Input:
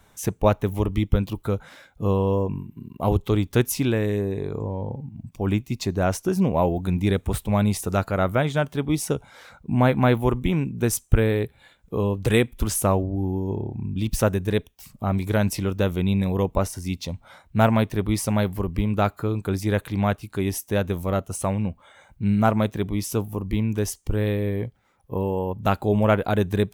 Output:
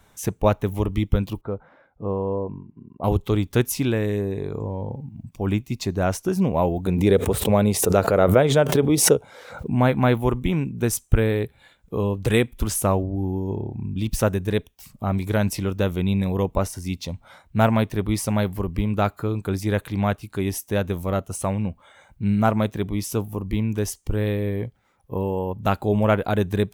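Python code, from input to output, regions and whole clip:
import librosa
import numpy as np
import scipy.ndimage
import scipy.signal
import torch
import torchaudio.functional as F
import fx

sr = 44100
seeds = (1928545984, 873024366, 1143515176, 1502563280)

y = fx.chain(x, sr, fx.lowpass(hz=1000.0, slope=12),
    fx.low_shelf(hz=250.0, db=-8.5), at=(1.41, 3.04))
y = fx.chain(y, sr, fx.highpass(hz=74.0, slope=12),
    fx.peak_eq(hz=470.0, db=10.5, octaves=0.86),
    fx.pre_swell(db_per_s=68.0), at=(6.86, 9.71))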